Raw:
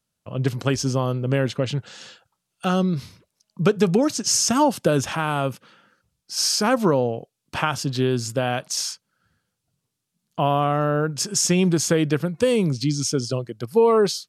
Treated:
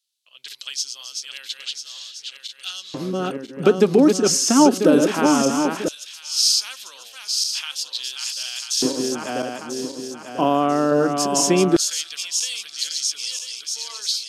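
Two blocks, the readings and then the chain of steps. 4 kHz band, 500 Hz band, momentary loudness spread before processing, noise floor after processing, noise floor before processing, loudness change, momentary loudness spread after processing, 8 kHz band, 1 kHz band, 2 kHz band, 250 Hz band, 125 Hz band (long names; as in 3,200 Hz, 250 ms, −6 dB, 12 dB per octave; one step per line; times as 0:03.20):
+5.5 dB, +0.5 dB, 11 LU, −45 dBFS, −80 dBFS, +1.5 dB, 16 LU, +3.0 dB, +0.5 dB, −1.0 dB, +3.0 dB, −9.0 dB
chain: feedback delay that plays each chunk backwards 496 ms, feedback 63%, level −4.5 dB
auto-filter high-pass square 0.17 Hz 280–3,700 Hz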